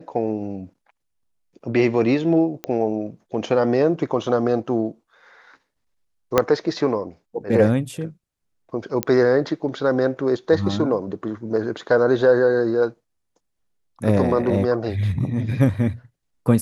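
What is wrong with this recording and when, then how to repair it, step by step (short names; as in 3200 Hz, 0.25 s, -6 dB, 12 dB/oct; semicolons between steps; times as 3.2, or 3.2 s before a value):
2.64 pop -14 dBFS
6.38 pop -2 dBFS
9.03 pop -6 dBFS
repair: de-click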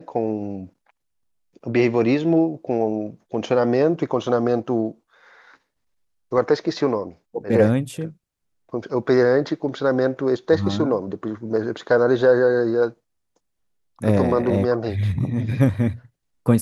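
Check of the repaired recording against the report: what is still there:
6.38 pop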